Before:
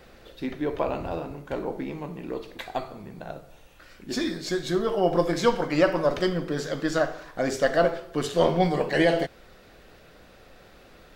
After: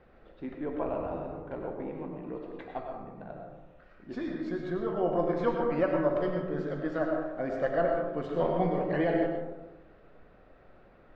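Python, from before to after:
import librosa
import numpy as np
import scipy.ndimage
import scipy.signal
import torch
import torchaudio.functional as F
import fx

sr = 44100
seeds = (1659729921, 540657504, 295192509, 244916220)

y = scipy.signal.sosfilt(scipy.signal.butter(2, 1700.0, 'lowpass', fs=sr, output='sos'), x)
y = fx.rev_freeverb(y, sr, rt60_s=1.1, hf_ratio=0.3, predelay_ms=65, drr_db=2.0)
y = F.gain(torch.from_numpy(y), -7.5).numpy()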